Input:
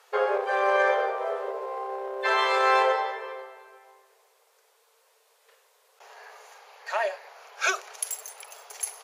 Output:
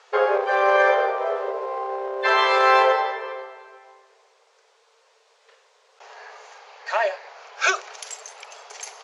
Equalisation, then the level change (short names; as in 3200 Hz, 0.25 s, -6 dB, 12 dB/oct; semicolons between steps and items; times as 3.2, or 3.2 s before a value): LPF 6700 Hz 24 dB/oct; +5.0 dB